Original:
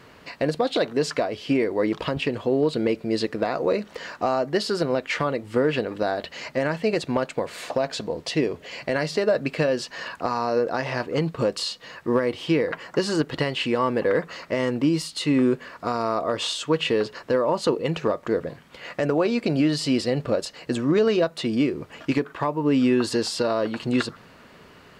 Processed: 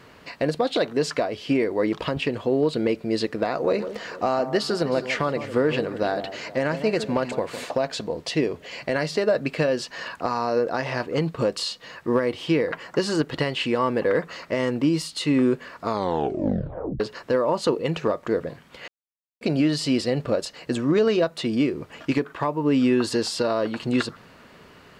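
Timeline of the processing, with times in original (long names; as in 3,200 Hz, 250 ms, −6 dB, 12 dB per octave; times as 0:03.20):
0:03.48–0:07.65: delay that swaps between a low-pass and a high-pass 157 ms, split 1,100 Hz, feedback 59%, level −10 dB
0:15.83: tape stop 1.17 s
0:18.88–0:19.41: silence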